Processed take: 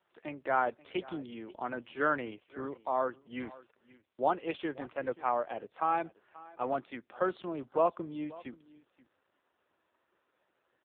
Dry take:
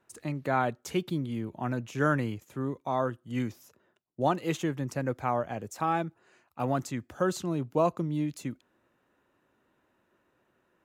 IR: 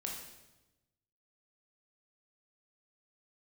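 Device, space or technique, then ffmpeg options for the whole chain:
satellite phone: -af "highpass=390,lowpass=3200,equalizer=frequency=3400:width=2.8:gain=4,aecho=1:1:532:0.1" -ar 8000 -c:a libopencore_amrnb -b:a 5900

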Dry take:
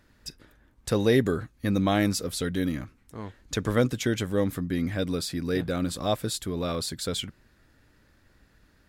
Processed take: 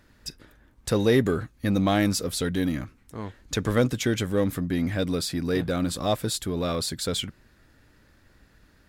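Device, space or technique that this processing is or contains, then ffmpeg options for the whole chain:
parallel distortion: -filter_complex "[0:a]asplit=2[link_01][link_02];[link_02]asoftclip=type=hard:threshold=-27.5dB,volume=-8dB[link_03];[link_01][link_03]amix=inputs=2:normalize=0"

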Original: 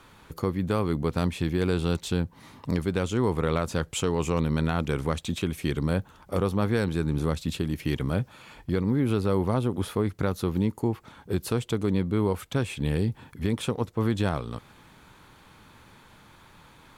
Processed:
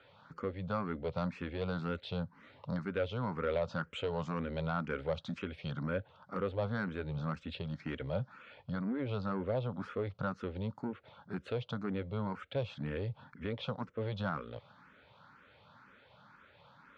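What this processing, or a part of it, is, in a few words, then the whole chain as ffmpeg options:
barber-pole phaser into a guitar amplifier: -filter_complex "[0:a]asplit=2[link_01][link_02];[link_02]afreqshift=2[link_03];[link_01][link_03]amix=inputs=2:normalize=1,asoftclip=type=tanh:threshold=-19.5dB,highpass=96,equalizer=frequency=340:width_type=q:width=4:gain=-9,equalizer=frequency=560:width_type=q:width=4:gain=9,equalizer=frequency=1400:width_type=q:width=4:gain=8,lowpass=frequency=4300:width=0.5412,lowpass=frequency=4300:width=1.3066,volume=-6dB"

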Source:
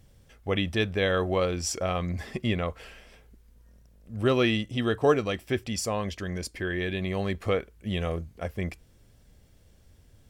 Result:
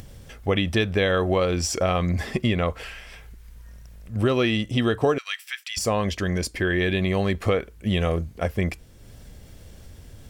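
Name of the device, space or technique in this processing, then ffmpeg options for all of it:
upward and downward compression: -filter_complex "[0:a]acompressor=mode=upward:threshold=-45dB:ratio=2.5,acompressor=threshold=-26dB:ratio=6,asettb=1/sr,asplit=3[link_01][link_02][link_03];[link_01]atrim=end=5.184[link_04];[link_02]atrim=start=5.18:end=5.77,asetpts=PTS-STARTPTS,afade=type=in:duration=0.004:curve=qsin,afade=type=out:start_time=0.586:duration=0.004:curve=qsin,highpass=frequency=1500:width=0.5412,highpass=frequency=1500:width=1.3066[link_05];[link_03]atrim=start=5.766[link_06];[link_04][link_05]acrossfade=duration=0.004:curve1=hsin:curve2=qsin[link_07];[link_07][link_06]acrossfade=duration=0.004:curve1=qsin:curve2=hsin,deesser=0.65,asettb=1/sr,asplit=3[link_08][link_09][link_10];[link_08]atrim=end=2.834[link_11];[link_09]atrim=start=2.83:end=4.16,asetpts=PTS-STARTPTS,afade=type=in:duration=0.004:curve=qsin,afade=type=out:start_time=1.326:duration=0.004:curve=qsin,equalizer=frequency=250:width_type=o:width=1:gain=-8,equalizer=frequency=500:width_type=o:width=1:gain=-6,equalizer=frequency=2000:width_type=o:width=1:gain=3[link_12];[link_10]atrim=start=4.156[link_13];[link_11][link_12]acrossfade=duration=0.004:curve1=hsin:curve2=qsin[link_14];[link_14][link_13]acrossfade=duration=0.004:curve1=qsin:curve2=hsin,volume=8.5dB"

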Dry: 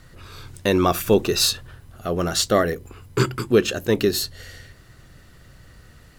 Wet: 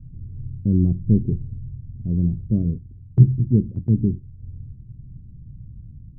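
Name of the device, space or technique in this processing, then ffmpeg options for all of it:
the neighbour's flat through the wall: -filter_complex "[0:a]lowpass=frequency=210:width=0.5412,lowpass=frequency=210:width=1.3066,equalizer=frequency=120:width_type=o:width=0.47:gain=4,asettb=1/sr,asplit=3[link_01][link_02][link_03];[link_01]atrim=end=2.784[link_04];[link_02]atrim=start=2.78:end=4.43,asetpts=PTS-STARTPTS,afade=type=in:duration=0.004:curve=qsin,afade=type=out:start_time=1.646:duration=0.004:curve=qsin,agate=range=-7dB:threshold=-34dB:ratio=16:detection=peak[link_05];[link_03]atrim=start=4.426[link_06];[link_04][link_05]acrossfade=duration=0.004:curve1=hsin:curve2=qsin[link_07];[link_07][link_06]acrossfade=duration=0.004:curve1=qsin:curve2=hsin,volume=8dB"

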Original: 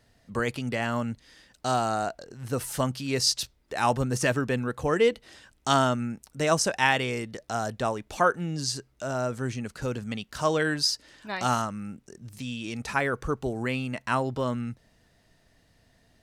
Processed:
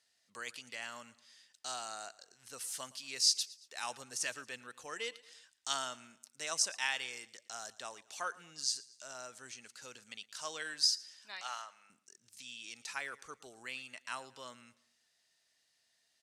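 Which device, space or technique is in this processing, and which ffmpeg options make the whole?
piezo pickup straight into a mixer: -filter_complex "[0:a]asettb=1/sr,asplit=3[link_01][link_02][link_03];[link_01]atrim=end=11.414[link_04];[link_02]atrim=start=11.41:end=11.9,asetpts=PTS-STARTPTS,afade=type=in:duration=0.004:curve=qsin,afade=type=out:start_time=0.486:duration=0.004:curve=qsin,acrossover=split=470 4300:gain=0.0891 1 0.224[link_05][link_06][link_07];[link_05][link_06][link_07]amix=inputs=3:normalize=0[link_08];[link_03]atrim=start=11.896[link_09];[link_04][link_08]acrossfade=duration=0.004:curve1=hsin:curve2=qsin[link_10];[link_10][link_09]acrossfade=duration=0.004:curve1=qsin:curve2=hsin,lowpass=7300,aderivative,aecho=1:1:114|228|342:0.0944|0.0415|0.0183"

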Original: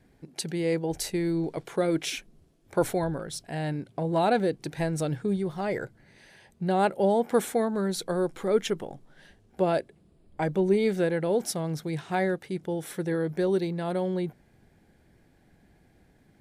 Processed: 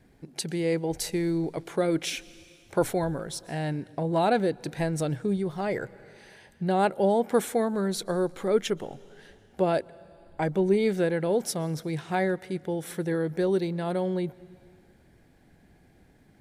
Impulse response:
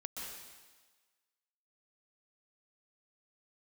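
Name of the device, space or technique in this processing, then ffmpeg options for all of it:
ducked reverb: -filter_complex "[0:a]asplit=3[link_01][link_02][link_03];[1:a]atrim=start_sample=2205[link_04];[link_02][link_04]afir=irnorm=-1:irlink=0[link_05];[link_03]apad=whole_len=723335[link_06];[link_05][link_06]sidechaincompress=threshold=-39dB:ratio=8:attack=31:release=540,volume=-8dB[link_07];[link_01][link_07]amix=inputs=2:normalize=0"

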